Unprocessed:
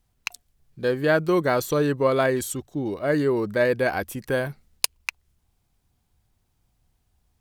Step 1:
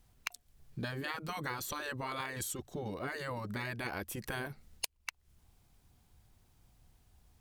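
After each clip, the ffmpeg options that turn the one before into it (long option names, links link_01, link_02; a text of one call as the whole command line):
ffmpeg -i in.wav -af "afftfilt=real='re*lt(hypot(re,im),0.251)':imag='im*lt(hypot(re,im),0.251)':win_size=1024:overlap=0.75,acompressor=threshold=-40dB:ratio=6,volume=3.5dB" out.wav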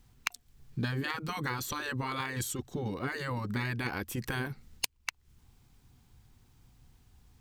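ffmpeg -i in.wav -filter_complex "[0:a]equalizer=frequency=125:width_type=o:width=0.33:gain=5,equalizer=frequency=250:width_type=o:width=0.33:gain=4,equalizer=frequency=630:width_type=o:width=0.33:gain=-9,equalizer=frequency=10000:width_type=o:width=0.33:gain=-5,equalizer=frequency=16000:width_type=o:width=0.33:gain=-5,asplit=2[link_01][link_02];[link_02]acrusher=bits=3:mix=0:aa=0.5,volume=-8dB[link_03];[link_01][link_03]amix=inputs=2:normalize=0,volume=4dB" out.wav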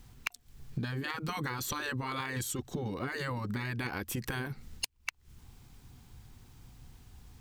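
ffmpeg -i in.wav -af "acompressor=threshold=-39dB:ratio=10,volume=7dB" out.wav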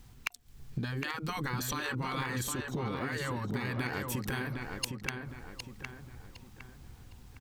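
ffmpeg -i in.wav -filter_complex "[0:a]asplit=2[link_01][link_02];[link_02]adelay=760,lowpass=frequency=3200:poles=1,volume=-4.5dB,asplit=2[link_03][link_04];[link_04]adelay=760,lowpass=frequency=3200:poles=1,volume=0.41,asplit=2[link_05][link_06];[link_06]adelay=760,lowpass=frequency=3200:poles=1,volume=0.41,asplit=2[link_07][link_08];[link_08]adelay=760,lowpass=frequency=3200:poles=1,volume=0.41,asplit=2[link_09][link_10];[link_10]adelay=760,lowpass=frequency=3200:poles=1,volume=0.41[link_11];[link_01][link_03][link_05][link_07][link_09][link_11]amix=inputs=6:normalize=0" out.wav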